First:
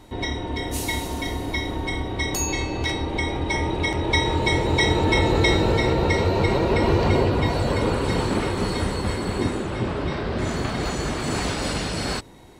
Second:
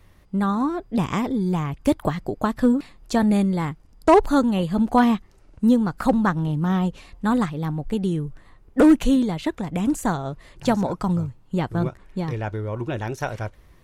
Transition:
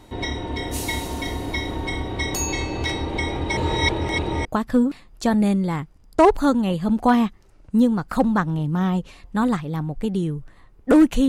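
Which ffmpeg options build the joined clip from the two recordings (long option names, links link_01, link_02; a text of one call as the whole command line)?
ffmpeg -i cue0.wav -i cue1.wav -filter_complex "[0:a]apad=whole_dur=11.28,atrim=end=11.28,asplit=2[link_01][link_02];[link_01]atrim=end=3.572[link_03];[link_02]atrim=start=3.568:end=4.452,asetpts=PTS-STARTPTS,areverse[link_04];[1:a]atrim=start=2.338:end=9.17[link_05];[link_03][link_04]acrossfade=duration=0.004:curve1=hsin:curve2=hsin[link_06];[link_06][link_05]acrossfade=duration=0.004:curve1=hsin:curve2=hsin" out.wav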